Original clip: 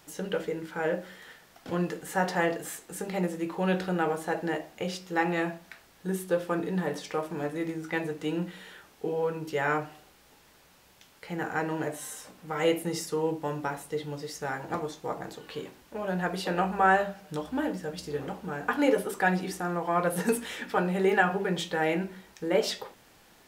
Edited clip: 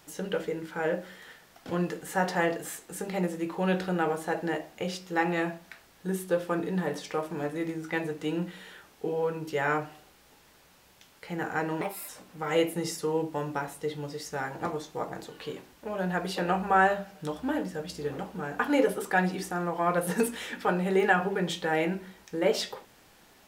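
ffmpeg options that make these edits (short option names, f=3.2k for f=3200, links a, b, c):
-filter_complex "[0:a]asplit=3[a][b][c];[a]atrim=end=11.814[d];[b]atrim=start=11.81:end=12.18,asetpts=PTS-STARTPTS,asetrate=58212,aresample=44100,atrim=end_sample=12361,asetpts=PTS-STARTPTS[e];[c]atrim=start=12.176[f];[d][e]acrossfade=d=0.004:c1=hsin:c2=hsin[g];[g][f]acrossfade=d=0.004:c1=hsin:c2=hsin"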